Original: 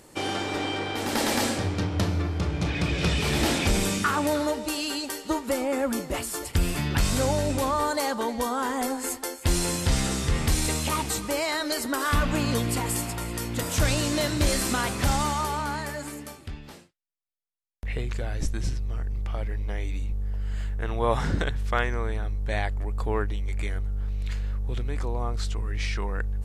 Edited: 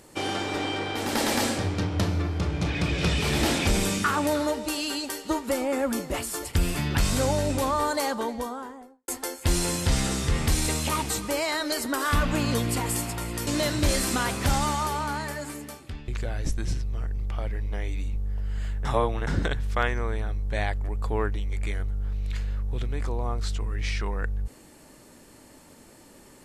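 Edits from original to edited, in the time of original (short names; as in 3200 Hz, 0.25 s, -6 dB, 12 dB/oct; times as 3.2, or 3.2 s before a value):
8.01–9.08 studio fade out
13.47–14.05 cut
16.66–18.04 cut
20.81–21.23 reverse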